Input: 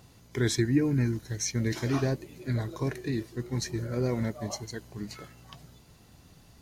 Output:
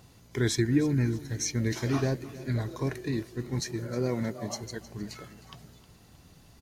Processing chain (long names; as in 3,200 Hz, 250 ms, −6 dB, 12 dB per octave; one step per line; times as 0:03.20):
0:03.59–0:04.61: high-pass filter 120 Hz
on a send: repeating echo 312 ms, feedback 43%, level −17 dB